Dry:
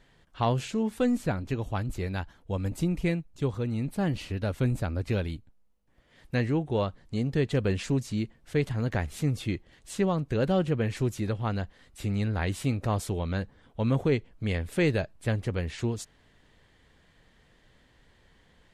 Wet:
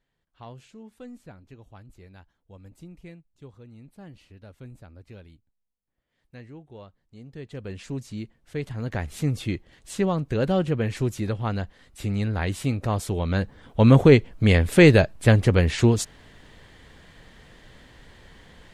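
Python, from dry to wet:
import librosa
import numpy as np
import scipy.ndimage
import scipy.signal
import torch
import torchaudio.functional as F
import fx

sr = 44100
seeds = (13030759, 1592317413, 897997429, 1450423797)

y = fx.gain(x, sr, db=fx.line((7.15, -17.0), (8.01, -4.5), (8.58, -4.5), (9.23, 2.5), (13.02, 2.5), (13.84, 11.5)))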